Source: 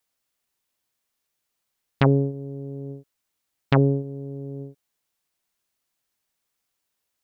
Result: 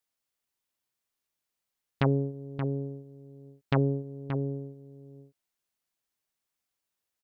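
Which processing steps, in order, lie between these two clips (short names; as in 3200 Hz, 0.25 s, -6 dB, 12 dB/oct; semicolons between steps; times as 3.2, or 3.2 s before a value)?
outdoor echo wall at 99 m, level -8 dB; gain -7 dB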